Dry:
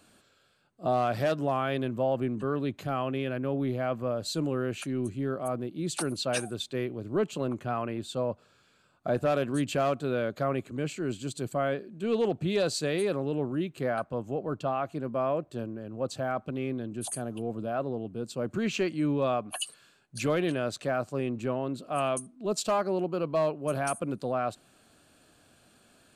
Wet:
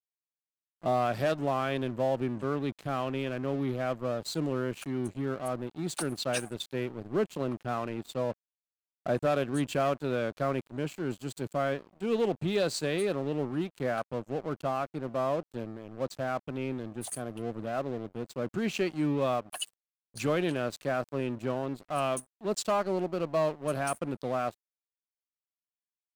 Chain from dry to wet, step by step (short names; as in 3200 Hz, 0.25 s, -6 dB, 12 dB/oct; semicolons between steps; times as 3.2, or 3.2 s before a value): crossover distortion -43 dBFS